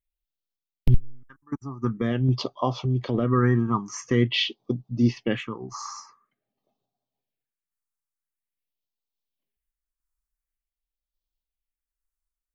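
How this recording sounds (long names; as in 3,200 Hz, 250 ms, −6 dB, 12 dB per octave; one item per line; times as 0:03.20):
phaser sweep stages 4, 0.47 Hz, lowest notch 510–1,800 Hz
sample-and-hold tremolo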